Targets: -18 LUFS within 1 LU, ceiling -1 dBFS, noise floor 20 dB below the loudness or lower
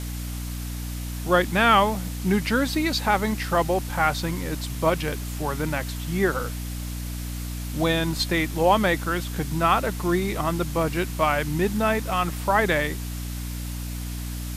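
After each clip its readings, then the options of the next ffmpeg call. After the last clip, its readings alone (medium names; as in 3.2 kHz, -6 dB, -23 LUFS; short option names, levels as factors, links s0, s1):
hum 60 Hz; highest harmonic 300 Hz; hum level -29 dBFS; noise floor -32 dBFS; noise floor target -45 dBFS; loudness -24.5 LUFS; peak level -5.0 dBFS; loudness target -18.0 LUFS
-> -af "bandreject=f=60:t=h:w=6,bandreject=f=120:t=h:w=6,bandreject=f=180:t=h:w=6,bandreject=f=240:t=h:w=6,bandreject=f=300:t=h:w=6"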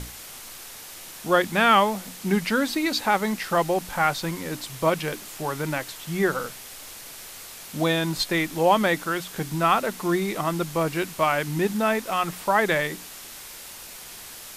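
hum not found; noise floor -41 dBFS; noise floor target -44 dBFS
-> -af "afftdn=nr=6:nf=-41"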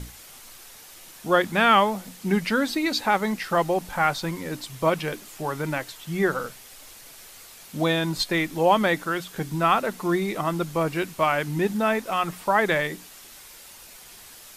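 noise floor -46 dBFS; loudness -24.0 LUFS; peak level -6.0 dBFS; loudness target -18.0 LUFS
-> -af "volume=2,alimiter=limit=0.891:level=0:latency=1"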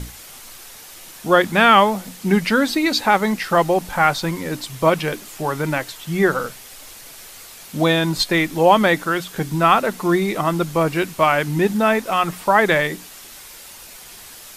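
loudness -18.0 LUFS; peak level -1.0 dBFS; noise floor -40 dBFS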